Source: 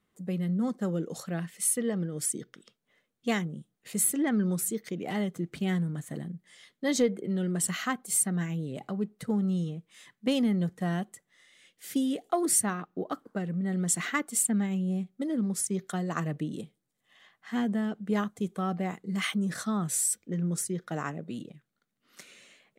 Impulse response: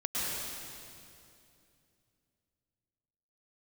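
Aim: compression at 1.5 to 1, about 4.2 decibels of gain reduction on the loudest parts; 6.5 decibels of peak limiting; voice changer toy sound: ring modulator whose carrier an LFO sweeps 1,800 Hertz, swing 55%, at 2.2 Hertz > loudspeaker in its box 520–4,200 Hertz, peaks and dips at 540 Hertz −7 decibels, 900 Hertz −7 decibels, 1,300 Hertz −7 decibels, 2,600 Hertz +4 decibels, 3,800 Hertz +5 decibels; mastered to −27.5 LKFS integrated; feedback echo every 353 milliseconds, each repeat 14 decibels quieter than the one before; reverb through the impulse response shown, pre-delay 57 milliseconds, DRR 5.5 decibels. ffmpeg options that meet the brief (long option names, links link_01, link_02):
-filter_complex "[0:a]acompressor=threshold=-32dB:ratio=1.5,alimiter=limit=-23.5dB:level=0:latency=1,aecho=1:1:353|706:0.2|0.0399,asplit=2[link_01][link_02];[1:a]atrim=start_sample=2205,adelay=57[link_03];[link_02][link_03]afir=irnorm=-1:irlink=0,volume=-13dB[link_04];[link_01][link_04]amix=inputs=2:normalize=0,aeval=exprs='val(0)*sin(2*PI*1800*n/s+1800*0.55/2.2*sin(2*PI*2.2*n/s))':channel_layout=same,highpass=520,equalizer=frequency=540:width_type=q:width=4:gain=-7,equalizer=frequency=900:width_type=q:width=4:gain=-7,equalizer=frequency=1300:width_type=q:width=4:gain=-7,equalizer=frequency=2600:width_type=q:width=4:gain=4,equalizer=frequency=3800:width_type=q:width=4:gain=5,lowpass=frequency=4200:width=0.5412,lowpass=frequency=4200:width=1.3066,volume=5.5dB"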